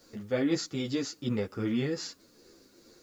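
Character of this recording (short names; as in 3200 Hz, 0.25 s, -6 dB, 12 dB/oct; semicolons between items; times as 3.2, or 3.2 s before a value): tremolo triangle 2.5 Hz, depth 45%; a quantiser's noise floor 12-bit, dither triangular; a shimmering, thickened sound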